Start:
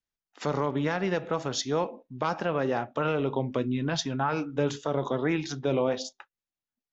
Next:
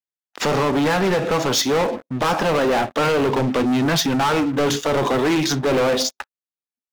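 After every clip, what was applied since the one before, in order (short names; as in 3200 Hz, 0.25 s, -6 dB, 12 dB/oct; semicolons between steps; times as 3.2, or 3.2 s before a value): HPF 150 Hz 12 dB/oct; sample leveller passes 5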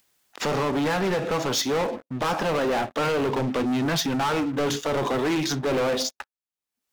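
upward compressor, threshold -36 dBFS; gain -5.5 dB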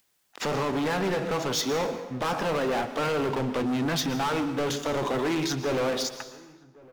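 outdoor echo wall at 190 m, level -24 dB; reverb RT60 1.1 s, pre-delay 0.108 s, DRR 11 dB; gain -3 dB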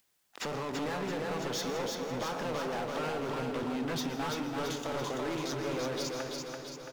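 compressor, threshold -31 dBFS, peak gain reduction 7 dB; feedback echo 0.336 s, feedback 56%, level -3.5 dB; gain -3.5 dB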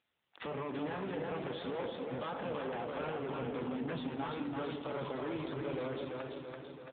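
doubler 45 ms -13 dB; gain -2.5 dB; AMR-NB 7.4 kbps 8000 Hz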